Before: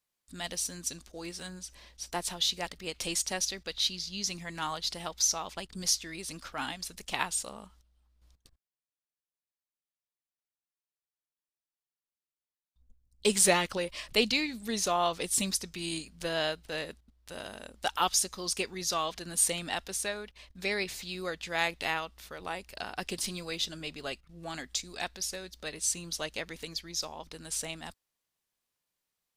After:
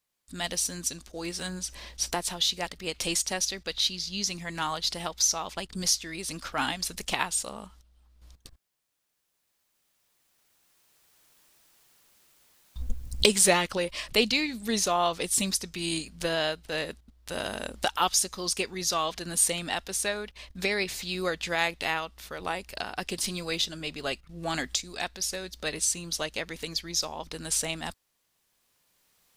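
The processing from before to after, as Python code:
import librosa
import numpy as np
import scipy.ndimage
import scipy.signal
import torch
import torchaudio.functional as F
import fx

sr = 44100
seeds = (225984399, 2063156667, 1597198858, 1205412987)

y = fx.recorder_agc(x, sr, target_db=-19.0, rise_db_per_s=7.4, max_gain_db=30)
y = F.gain(torch.from_numpy(y), 2.5).numpy()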